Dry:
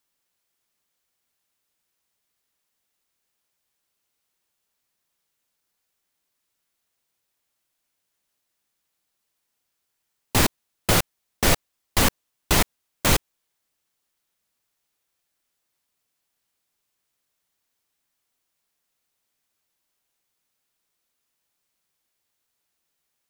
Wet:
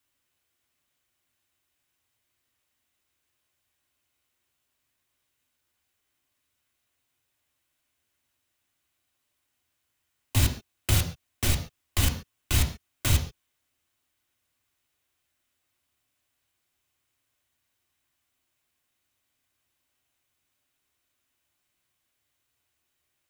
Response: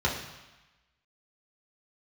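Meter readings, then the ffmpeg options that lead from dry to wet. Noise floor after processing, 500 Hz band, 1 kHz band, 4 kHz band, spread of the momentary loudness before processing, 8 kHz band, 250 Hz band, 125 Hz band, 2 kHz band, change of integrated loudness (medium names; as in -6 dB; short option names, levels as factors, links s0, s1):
-79 dBFS, -13.0 dB, -13.0 dB, -6.0 dB, 6 LU, -6.0 dB, -8.0 dB, +2.0 dB, -9.0 dB, -5.0 dB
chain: -filter_complex "[0:a]acrossover=split=200|3000[s0][s1][s2];[s1]acompressor=threshold=0.0282:ratio=6[s3];[s0][s3][s2]amix=inputs=3:normalize=0,alimiter=limit=0.178:level=0:latency=1,asplit=2[s4][s5];[1:a]atrim=start_sample=2205,afade=t=out:st=0.19:d=0.01,atrim=end_sample=8820[s6];[s5][s6]afir=irnorm=-1:irlink=0,volume=0.237[s7];[s4][s7]amix=inputs=2:normalize=0"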